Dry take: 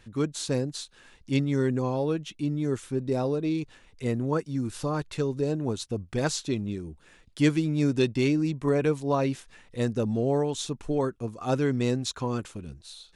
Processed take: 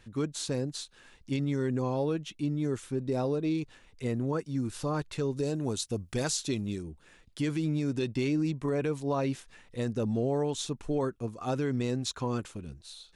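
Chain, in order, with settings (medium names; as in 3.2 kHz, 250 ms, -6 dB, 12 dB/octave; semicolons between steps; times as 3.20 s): 5.36–6.83 s: treble shelf 4.1 kHz +11 dB; peak limiter -19 dBFS, peak gain reduction 9 dB; trim -2 dB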